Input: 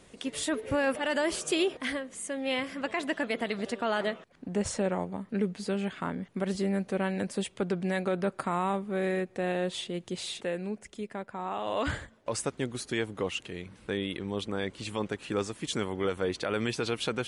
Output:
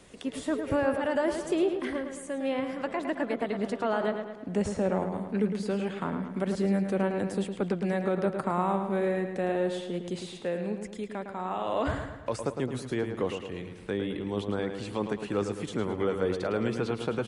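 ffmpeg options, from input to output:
-filter_complex "[0:a]acrossover=split=220|1400[a][b][c];[c]acompressor=threshold=-46dB:ratio=6[d];[a][b][d]amix=inputs=3:normalize=0,asplit=2[e][f];[f]adelay=108,lowpass=f=4.8k:p=1,volume=-7dB,asplit=2[g][h];[h]adelay=108,lowpass=f=4.8k:p=1,volume=0.52,asplit=2[i][j];[j]adelay=108,lowpass=f=4.8k:p=1,volume=0.52,asplit=2[k][l];[l]adelay=108,lowpass=f=4.8k:p=1,volume=0.52,asplit=2[m][n];[n]adelay=108,lowpass=f=4.8k:p=1,volume=0.52,asplit=2[o][p];[p]adelay=108,lowpass=f=4.8k:p=1,volume=0.52[q];[e][g][i][k][m][o][q]amix=inputs=7:normalize=0,volume=1.5dB"

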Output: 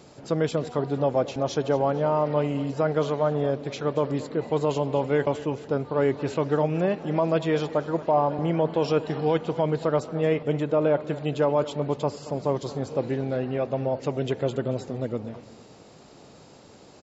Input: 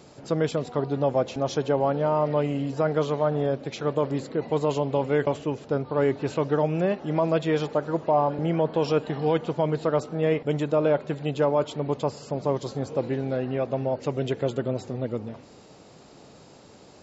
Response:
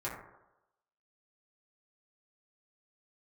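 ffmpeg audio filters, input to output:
-filter_complex "[0:a]asettb=1/sr,asplit=3[a][b][c];[a]atrim=end=10.434[d];[b]atrim=start=10.43:end=11.03,asetpts=PTS-STARTPTS,afade=t=in:d=0.004:c=qsin,afade=t=out:st=0.596:d=0.004:c=qsin,highshelf=f=4.4k:g=-8.5[e];[c]atrim=start=11.026[f];[d][e]acrossfade=d=0.004:c1=hsin:c2=qsin[g];[g][f]acrossfade=d=0.004:c1=qsin:c2=hsin,aecho=1:1:227|454|681|908:0.15|0.0628|0.0264|0.0111"

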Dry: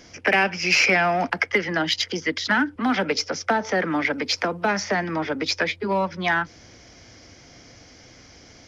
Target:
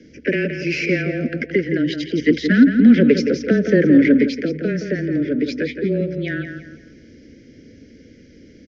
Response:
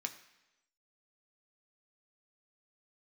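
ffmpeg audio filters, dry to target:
-filter_complex "[0:a]asuperstop=centerf=950:order=8:qfactor=0.92,aemphasis=mode=reproduction:type=75fm,asplit=2[a][b];[b]adelay=169,lowpass=f=4.2k:p=1,volume=-7.5dB,asplit=2[c][d];[d]adelay=169,lowpass=f=4.2k:p=1,volume=0.36,asplit=2[e][f];[f]adelay=169,lowpass=f=4.2k:p=1,volume=0.36,asplit=2[g][h];[h]adelay=169,lowpass=f=4.2k:p=1,volume=0.36[i];[a][c][e][g][i]amix=inputs=5:normalize=0,asplit=3[j][k][l];[j]afade=t=out:st=2.17:d=0.02[m];[k]acontrast=38,afade=t=in:st=2.17:d=0.02,afade=t=out:st=4.26:d=0.02[n];[l]afade=t=in:st=4.26:d=0.02[o];[m][n][o]amix=inputs=3:normalize=0,afreqshift=-19,equalizer=f=270:t=o:w=2:g=12,volume=-3.5dB"

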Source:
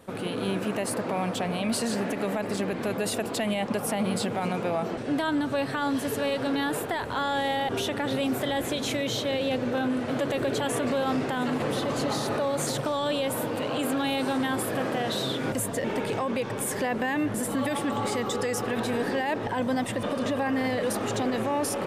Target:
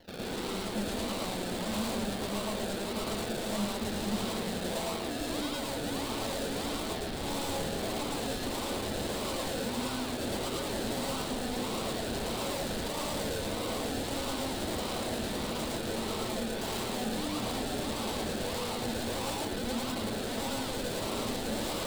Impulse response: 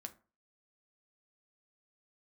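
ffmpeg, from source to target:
-filter_complex "[0:a]highshelf=f=3.2k:g=10.5,acrusher=samples=35:mix=1:aa=0.000001:lfo=1:lforange=21:lforate=1.6,equalizer=f=125:t=o:w=1:g=-6,equalizer=f=4k:t=o:w=1:g=11,equalizer=f=8k:t=o:w=1:g=-7,aeval=exprs='0.0501*(abs(mod(val(0)/0.0501+3,4)-2)-1)':c=same,asplit=2[a][b];[1:a]atrim=start_sample=2205,adelay=110[c];[b][c]afir=irnorm=-1:irlink=0,volume=6.5dB[d];[a][d]amix=inputs=2:normalize=0,volume=-7dB"

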